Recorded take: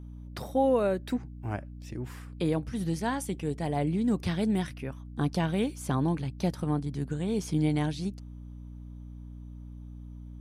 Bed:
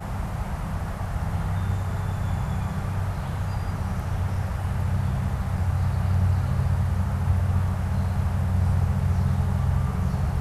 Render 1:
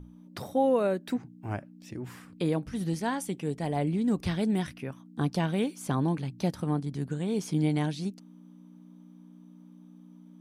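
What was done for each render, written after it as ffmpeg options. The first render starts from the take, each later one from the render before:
-af "bandreject=f=60:t=h:w=6,bandreject=f=120:t=h:w=6"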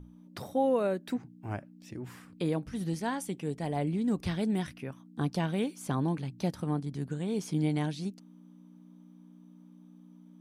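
-af "volume=-2.5dB"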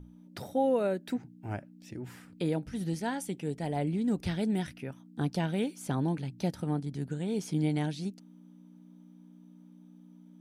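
-af "bandreject=f=1.1k:w=5.4"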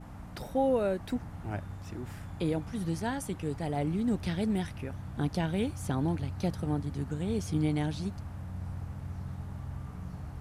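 -filter_complex "[1:a]volume=-16.5dB[a];[0:a][a]amix=inputs=2:normalize=0"

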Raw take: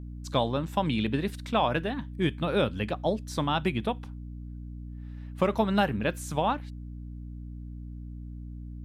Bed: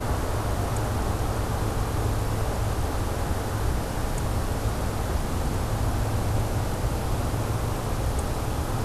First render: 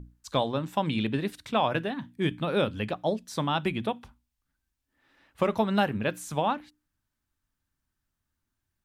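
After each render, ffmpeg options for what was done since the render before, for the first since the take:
-af "bandreject=f=60:t=h:w=6,bandreject=f=120:t=h:w=6,bandreject=f=180:t=h:w=6,bandreject=f=240:t=h:w=6,bandreject=f=300:t=h:w=6"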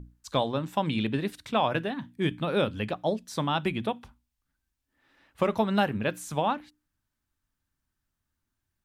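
-af anull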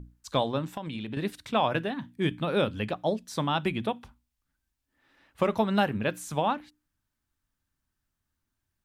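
-filter_complex "[0:a]asettb=1/sr,asplit=3[a][b][c];[a]atrim=end=0.714[d];[b]atrim=start=0.71:end=1.17,asetpts=PTS-STARTPTS,afade=t=in:d=0.004:c=qsin,afade=t=out:st=0.456:d=0.004:c=qsin,acompressor=threshold=-32dB:ratio=5:attack=3.2:release=140:knee=1:detection=peak[e];[c]atrim=start=1.166[f];[d][e]acrossfade=d=0.004:c1=hsin:c2=qsin[g];[g][f]acrossfade=d=0.004:c1=qsin:c2=hsin"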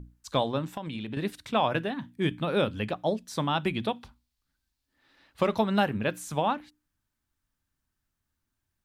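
-filter_complex "[0:a]asettb=1/sr,asplit=3[a][b][c];[a]atrim=end=3.744[d];[b]atrim=start=3.74:end=5.61,asetpts=PTS-STARTPTS,afade=t=in:d=0.004:c=qsin,afade=t=out:st=1.866:d=0.004:c=qsin,equalizer=f=4.3k:t=o:w=0.66:g=7.5[e];[c]atrim=start=5.606[f];[d][e]acrossfade=d=0.004:c1=hsin:c2=qsin[g];[g][f]acrossfade=d=0.004:c1=qsin:c2=hsin"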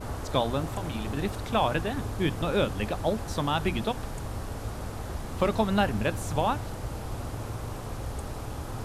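-filter_complex "[1:a]volume=-8.5dB[a];[0:a][a]amix=inputs=2:normalize=0"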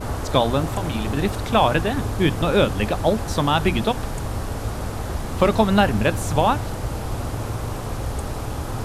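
-af "volume=8dB,alimiter=limit=-3dB:level=0:latency=1"

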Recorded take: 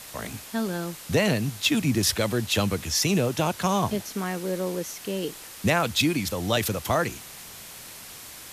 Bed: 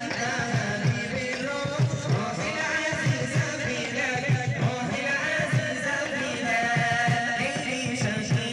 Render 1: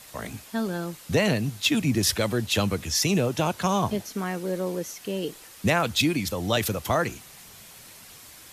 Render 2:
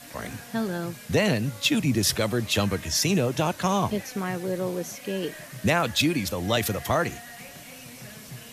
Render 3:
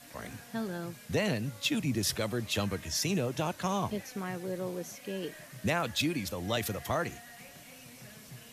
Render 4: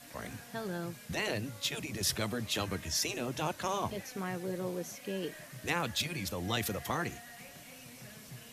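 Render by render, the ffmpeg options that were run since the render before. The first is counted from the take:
-af "afftdn=nr=6:nf=-43"
-filter_complex "[1:a]volume=-17.5dB[a];[0:a][a]amix=inputs=2:normalize=0"
-af "volume=-7.5dB"
-af "afftfilt=real='re*lt(hypot(re,im),0.178)':imag='im*lt(hypot(re,im),0.178)':win_size=1024:overlap=0.75"

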